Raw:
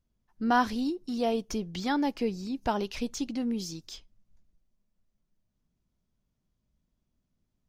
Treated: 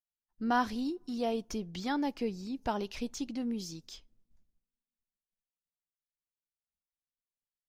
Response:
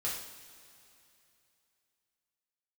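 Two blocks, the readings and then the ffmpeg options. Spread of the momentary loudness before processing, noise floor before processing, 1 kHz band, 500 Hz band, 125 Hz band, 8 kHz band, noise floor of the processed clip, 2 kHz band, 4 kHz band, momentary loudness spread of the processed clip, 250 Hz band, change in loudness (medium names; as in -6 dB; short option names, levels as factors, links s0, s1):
10 LU, -80 dBFS, -4.5 dB, -4.5 dB, -4.5 dB, -4.5 dB, under -85 dBFS, -4.5 dB, -4.5 dB, 10 LU, -4.0 dB, -4.5 dB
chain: -filter_complex "[0:a]agate=range=0.0224:threshold=0.00126:ratio=3:detection=peak,asplit=2[s0][s1];[1:a]atrim=start_sample=2205,asetrate=66150,aresample=44100,lowpass=1200[s2];[s1][s2]afir=irnorm=-1:irlink=0,volume=0.0531[s3];[s0][s3]amix=inputs=2:normalize=0,volume=0.596"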